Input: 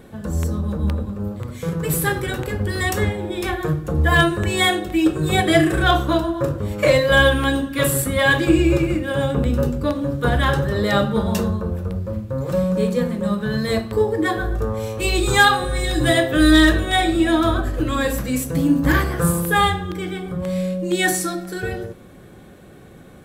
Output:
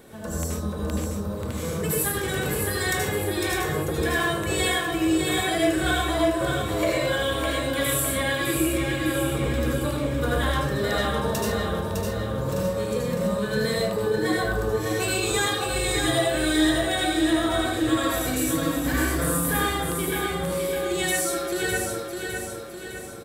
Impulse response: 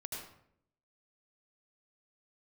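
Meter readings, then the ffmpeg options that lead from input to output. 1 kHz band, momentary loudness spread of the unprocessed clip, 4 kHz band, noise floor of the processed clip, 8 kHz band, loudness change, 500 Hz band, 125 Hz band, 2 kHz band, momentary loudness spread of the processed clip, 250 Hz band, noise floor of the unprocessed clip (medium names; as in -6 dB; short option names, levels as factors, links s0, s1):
-6.0 dB, 11 LU, -3.5 dB, -33 dBFS, +1.0 dB, -5.0 dB, -4.0 dB, -7.0 dB, -6.0 dB, 6 LU, -6.0 dB, -43 dBFS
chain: -filter_complex "[0:a]acrossover=split=1700[s0][s1];[s1]volume=3.55,asoftclip=hard,volume=0.282[s2];[s0][s2]amix=inputs=2:normalize=0,bass=f=250:g=-8,treble=f=4000:g=6,acompressor=threshold=0.0631:ratio=4,aecho=1:1:607|1214|1821|2428|3035|3642:0.562|0.281|0.141|0.0703|0.0351|0.0176[s3];[1:a]atrim=start_sample=2205,afade=t=out:st=0.21:d=0.01,atrim=end_sample=9702[s4];[s3][s4]afir=irnorm=-1:irlink=0,volume=1.26"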